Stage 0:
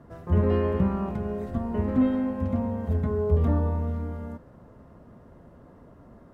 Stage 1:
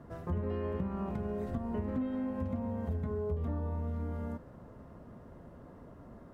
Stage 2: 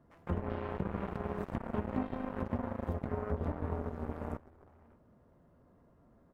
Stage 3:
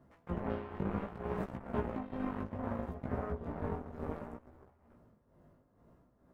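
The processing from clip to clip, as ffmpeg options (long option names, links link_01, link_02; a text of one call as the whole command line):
ffmpeg -i in.wav -af "acompressor=threshold=-31dB:ratio=6,volume=-1dB" out.wav
ffmpeg -i in.wav -filter_complex "[0:a]asplit=2[link_01][link_02];[link_02]adelay=583.1,volume=-7dB,highshelf=frequency=4000:gain=-13.1[link_03];[link_01][link_03]amix=inputs=2:normalize=0,aeval=exprs='0.0891*(cos(1*acos(clip(val(0)/0.0891,-1,1)))-cos(1*PI/2))+0.0158*(cos(7*acos(clip(val(0)/0.0891,-1,1)))-cos(7*PI/2))':channel_layout=same" out.wav
ffmpeg -i in.wav -af "tremolo=f=2.2:d=0.68,flanger=delay=15.5:depth=4.6:speed=0.64,volume=5dB" out.wav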